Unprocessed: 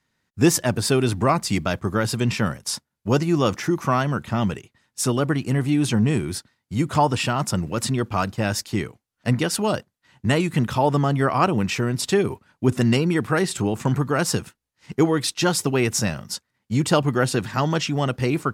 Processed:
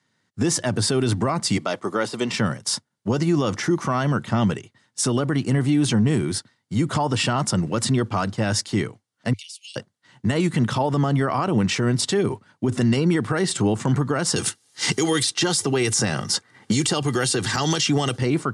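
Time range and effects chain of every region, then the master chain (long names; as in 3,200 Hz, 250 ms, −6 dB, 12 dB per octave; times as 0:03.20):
0:01.57–0:02.34: high-pass filter 330 Hz + de-essing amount 70% + notch filter 1,600 Hz, Q 9.9
0:09.33–0:09.76: Butterworth high-pass 2,300 Hz 96 dB per octave + downward compressor 8 to 1, threshold −39 dBFS
0:14.36–0:18.18: high-shelf EQ 3,400 Hz +10 dB + comb filter 2.5 ms, depth 35% + multiband upward and downward compressor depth 100%
whole clip: Chebyshev band-pass filter 100–9,800 Hz, order 4; notch filter 2,500 Hz, Q 10; brickwall limiter −16 dBFS; level +4 dB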